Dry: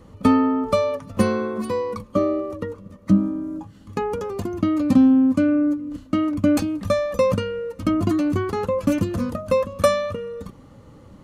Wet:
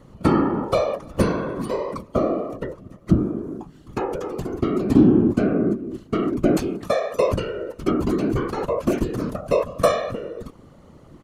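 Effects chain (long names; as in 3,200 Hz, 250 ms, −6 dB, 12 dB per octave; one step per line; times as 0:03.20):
0:06.69–0:07.32: high-pass filter 210 Hz
random phases in short frames
slap from a distant wall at 50 metres, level −28 dB
level −1 dB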